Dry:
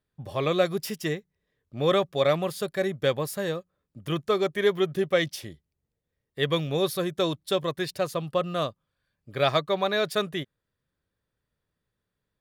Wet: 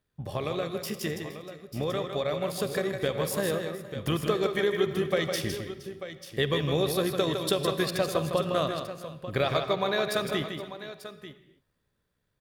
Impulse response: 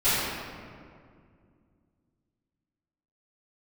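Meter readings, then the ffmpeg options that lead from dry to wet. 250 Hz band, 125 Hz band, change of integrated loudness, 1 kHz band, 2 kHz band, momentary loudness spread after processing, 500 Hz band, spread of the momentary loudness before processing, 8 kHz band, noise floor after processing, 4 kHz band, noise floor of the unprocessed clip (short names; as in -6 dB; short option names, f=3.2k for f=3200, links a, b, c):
-0.5 dB, 0.0 dB, -2.0 dB, -2.0 dB, -1.0 dB, 13 LU, -2.0 dB, 11 LU, +2.5 dB, -77 dBFS, -1.0 dB, -83 dBFS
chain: -filter_complex "[0:a]acompressor=threshold=-32dB:ratio=6,tremolo=f=68:d=0.4,aecho=1:1:158|468|891:0.473|0.119|0.251,dynaudnorm=f=540:g=11:m=5.5dB,asplit=2[a][b];[1:a]atrim=start_sample=2205,afade=t=out:st=0.31:d=0.01,atrim=end_sample=14112,adelay=38[c];[b][c]afir=irnorm=-1:irlink=0,volume=-27.5dB[d];[a][d]amix=inputs=2:normalize=0,volume=4dB"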